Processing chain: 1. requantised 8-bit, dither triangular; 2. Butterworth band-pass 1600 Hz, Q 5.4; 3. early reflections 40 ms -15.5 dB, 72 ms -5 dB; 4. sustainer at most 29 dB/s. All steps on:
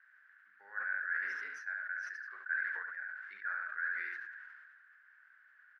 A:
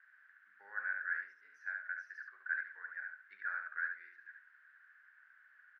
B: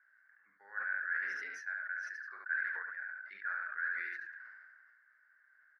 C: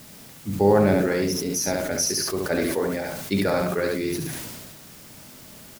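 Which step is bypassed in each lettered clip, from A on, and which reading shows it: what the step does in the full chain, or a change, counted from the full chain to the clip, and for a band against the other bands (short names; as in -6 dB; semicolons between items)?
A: 4, crest factor change +3.0 dB; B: 1, distortion -21 dB; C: 2, crest factor change +1.5 dB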